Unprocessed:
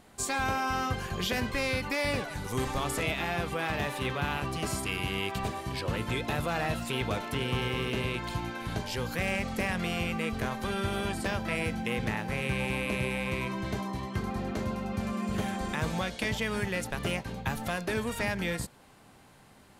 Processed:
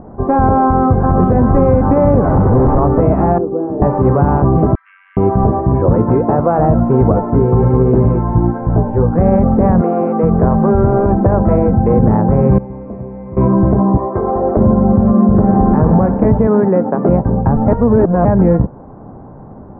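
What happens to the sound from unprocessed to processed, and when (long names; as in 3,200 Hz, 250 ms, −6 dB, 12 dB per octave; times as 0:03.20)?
0:00.64–0:01.28: delay throw 390 ms, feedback 70%, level −3 dB
0:02.24–0:02.79: sign of each sample alone
0:03.38–0:03.82: resonant band-pass 360 Hz, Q 3.2
0:04.75–0:05.17: Butterworth high-pass 1,600 Hz 48 dB per octave
0:05.93–0:06.58: high-pass filter 140 Hz → 500 Hz 6 dB per octave
0:07.12–0:09.18: chorus effect 1.3 Hz, delay 15.5 ms, depth 2.8 ms
0:09.81–0:11.94: multiband delay without the direct sound highs, lows 420 ms, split 240 Hz
0:12.58–0:13.37: tuned comb filter 230 Hz, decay 0.98 s, mix 90%
0:13.97–0:14.57: low shelf with overshoot 300 Hz −13 dB, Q 1.5
0:15.35–0:15.80: thrown reverb, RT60 2.7 s, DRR 3 dB
0:16.47–0:17.09: high-pass filter 190 Hz 24 dB per octave
0:17.68–0:18.25: reverse
whole clip: Bessel low-pass filter 650 Hz, order 6; boost into a limiter +26 dB; level −1 dB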